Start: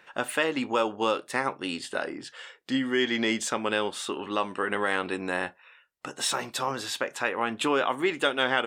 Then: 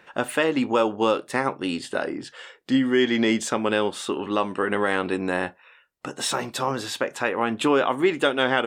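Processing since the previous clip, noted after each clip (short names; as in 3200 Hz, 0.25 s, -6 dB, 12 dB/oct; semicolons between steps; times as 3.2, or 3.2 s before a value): tilt shelf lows +3.5 dB, about 670 Hz; gain +4.5 dB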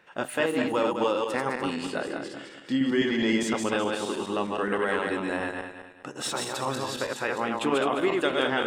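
regenerating reverse delay 0.104 s, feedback 59%, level -2.5 dB; gain -6 dB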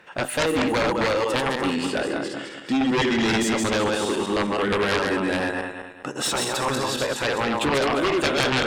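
added harmonics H 7 -6 dB, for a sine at -7.5 dBFS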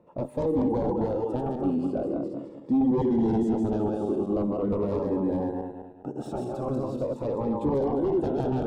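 EQ curve 280 Hz 0 dB, 840 Hz -3 dB, 1800 Hz -29 dB; cascading phaser falling 0.42 Hz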